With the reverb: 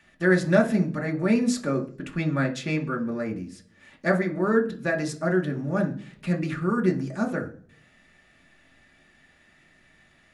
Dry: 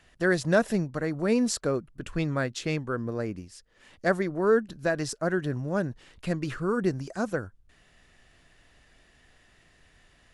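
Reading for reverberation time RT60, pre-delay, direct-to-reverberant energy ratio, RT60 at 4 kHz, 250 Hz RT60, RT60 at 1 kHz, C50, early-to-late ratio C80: 0.45 s, 3 ms, 0.5 dB, 0.55 s, 0.75 s, 0.40 s, 13.5 dB, 19.0 dB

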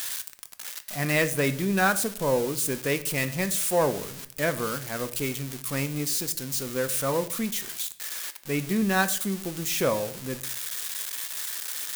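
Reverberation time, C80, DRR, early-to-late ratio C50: 0.55 s, 19.0 dB, 10.0 dB, 15.5 dB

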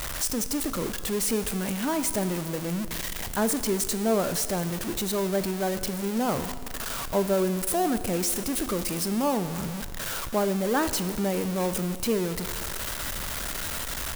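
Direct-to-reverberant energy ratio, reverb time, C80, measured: 10.5 dB, 1.9 s, 13.0 dB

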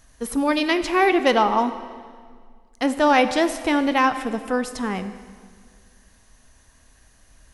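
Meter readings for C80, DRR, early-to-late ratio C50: 12.5 dB, 10.0 dB, 11.5 dB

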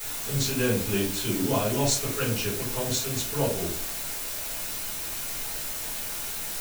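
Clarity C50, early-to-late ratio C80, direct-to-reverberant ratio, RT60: 6.5 dB, 11.0 dB, −9.5 dB, 0.45 s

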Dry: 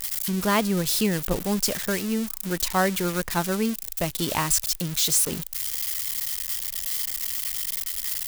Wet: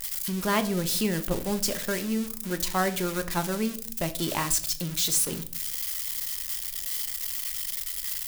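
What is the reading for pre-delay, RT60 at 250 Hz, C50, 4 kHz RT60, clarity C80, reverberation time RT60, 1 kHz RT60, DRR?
3 ms, 0.75 s, 15.0 dB, 0.35 s, 20.0 dB, 0.50 s, 0.40 s, 8.0 dB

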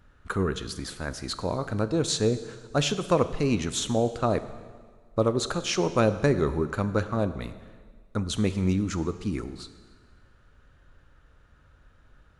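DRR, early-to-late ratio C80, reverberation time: 11.5 dB, 14.0 dB, 1.7 s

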